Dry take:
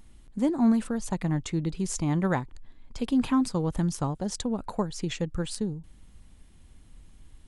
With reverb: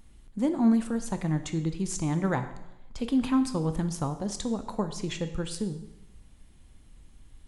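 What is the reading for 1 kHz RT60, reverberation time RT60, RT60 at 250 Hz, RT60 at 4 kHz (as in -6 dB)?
0.90 s, 0.90 s, 0.85 s, 0.85 s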